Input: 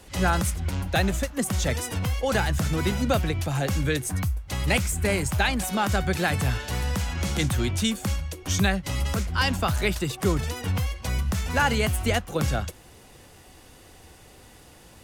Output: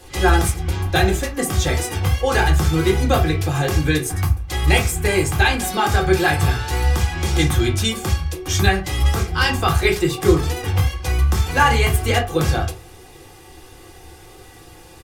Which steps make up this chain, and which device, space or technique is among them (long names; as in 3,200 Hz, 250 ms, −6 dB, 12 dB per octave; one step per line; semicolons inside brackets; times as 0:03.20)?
microphone above a desk (comb filter 2.5 ms, depth 52%; convolution reverb RT60 0.35 s, pre-delay 3 ms, DRR −1 dB)
level +2.5 dB